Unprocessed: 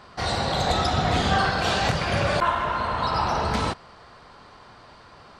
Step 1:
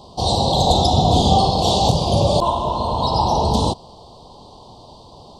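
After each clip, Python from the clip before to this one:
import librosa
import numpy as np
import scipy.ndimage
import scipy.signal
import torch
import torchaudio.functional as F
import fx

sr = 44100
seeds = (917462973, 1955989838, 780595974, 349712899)

y = scipy.signal.sosfilt(scipy.signal.ellip(3, 1.0, 60, [920.0, 3400.0], 'bandstop', fs=sr, output='sos'), x)
y = F.gain(torch.from_numpy(y), 8.5).numpy()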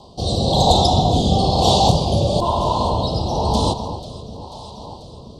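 y = fx.echo_alternate(x, sr, ms=245, hz=1000.0, feedback_pct=80, wet_db=-12.0)
y = fx.rotary(y, sr, hz=1.0)
y = F.gain(torch.from_numpy(y), 2.0).numpy()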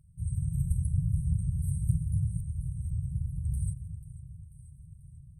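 y = fx.brickwall_bandstop(x, sr, low_hz=170.0, high_hz=8100.0)
y = F.gain(torch.from_numpy(y), -8.0).numpy()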